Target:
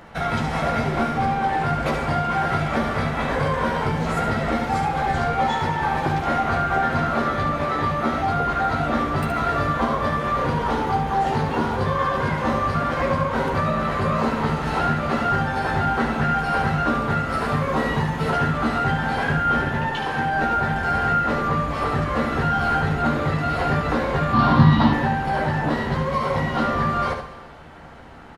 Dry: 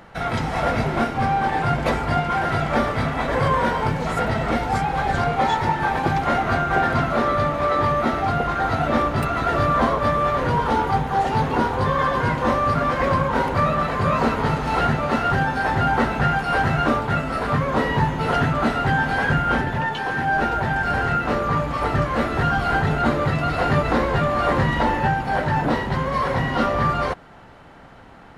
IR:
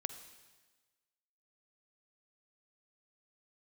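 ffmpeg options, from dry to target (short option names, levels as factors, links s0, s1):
-filter_complex "[0:a]asettb=1/sr,asplit=3[s0][s1][s2];[s0]atrim=end=17.294[s3];[s1]atrim=start=17.29:end=18.3,asetpts=PTS-STARTPTS,afade=t=in:d=0.004:c=qsin,afade=t=out:st=1.006:d=0.004:c=qsin,highshelf=f=6300:g=5[s4];[s2]atrim=start=18.296[s5];[s3][s4]acrossfade=d=0.004:c1=hsin:c2=qsin[s6];[s6][s5]acrossfade=d=0.004:c1=qsin:c2=hsin,asettb=1/sr,asplit=3[s7][s8][s9];[s7]atrim=end=26.114[s10];[s8]atrim=start=26.11:end=26.54,asetpts=PTS-STARTPTS,afade=t=in:d=0.004:c=qsin,afade=t=out:st=0.426:d=0.004:c=qsin,bandreject=f=1700:w=8.1[s11];[s9]atrim=start=26.536[s12];[s10][s11]acrossfade=d=0.004:c1=hsin:c2=qsin[s13];[s13][s12]acrossfade=d=0.004:c1=qsin:c2=hsin,aecho=1:1:13|72:0.531|0.473,acompressor=threshold=0.0794:ratio=2,asettb=1/sr,asplit=3[s14][s15][s16];[s14]atrim=end=24.334[s17];[s15]atrim=start=24.33:end=24.93,asetpts=PTS-STARTPTS,afade=t=in:d=0.004:c=qsin,afade=t=out:st=0.596:d=0.004:c=qsin,equalizer=f=125:t=o:w=1:g=12,equalizer=f=250:t=o:w=1:g=8,equalizer=f=500:t=o:w=1:g=-8,equalizer=f=1000:t=o:w=1:g=9,equalizer=f=2000:t=o:w=1:g=-5,equalizer=f=4000:t=o:w=1:g=11,equalizer=f=8000:t=o:w=1:g=-11[s18];[s16]atrim=start=24.926[s19];[s17][s18]acrossfade=d=0.004:c1=hsin:c2=qsin[s20];[s20][s19]acrossfade=d=0.004:c1=qsin:c2=hsin[s21];[1:a]atrim=start_sample=2205[s22];[s21][s22]afir=irnorm=-1:irlink=0,volume=1.19"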